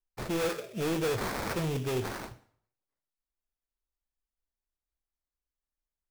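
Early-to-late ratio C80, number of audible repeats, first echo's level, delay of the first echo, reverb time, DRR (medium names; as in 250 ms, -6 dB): 18.5 dB, no echo, no echo, no echo, 0.60 s, 11.0 dB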